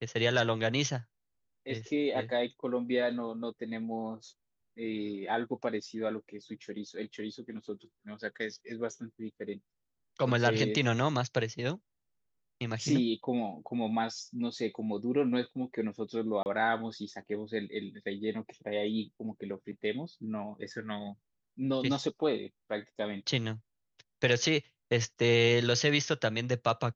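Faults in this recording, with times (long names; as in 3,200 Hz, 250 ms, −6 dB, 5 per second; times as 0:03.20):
0:16.43–0:16.46: drop-out 29 ms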